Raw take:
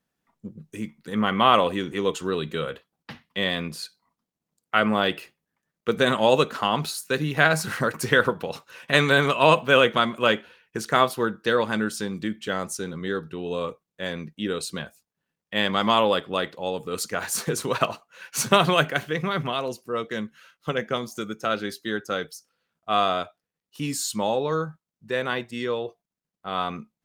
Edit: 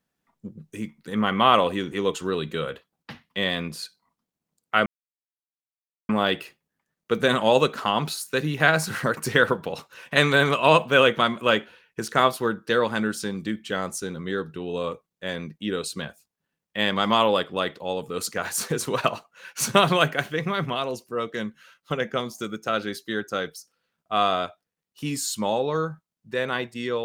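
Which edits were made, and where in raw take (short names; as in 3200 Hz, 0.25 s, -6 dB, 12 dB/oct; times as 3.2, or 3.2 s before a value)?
4.86 insert silence 1.23 s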